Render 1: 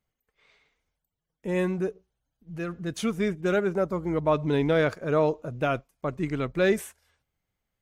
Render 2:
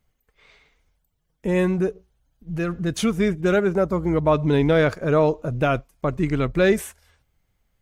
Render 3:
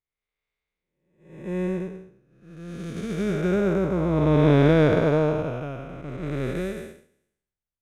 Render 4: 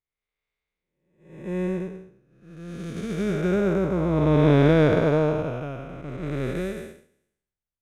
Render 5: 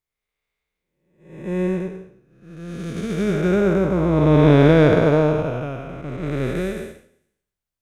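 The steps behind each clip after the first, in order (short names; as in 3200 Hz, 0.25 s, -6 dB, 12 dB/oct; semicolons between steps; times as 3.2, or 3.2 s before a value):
low shelf 80 Hz +10.5 dB; in parallel at -1 dB: compressor, threshold -31 dBFS, peak gain reduction 13 dB; on the sum: gain +2.5 dB
time blur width 0.566 s; upward expander 2.5:1, over -41 dBFS; gain +6 dB
nothing audible
reverb RT60 0.40 s, pre-delay 63 ms, DRR 13.5 dB; gain +4.5 dB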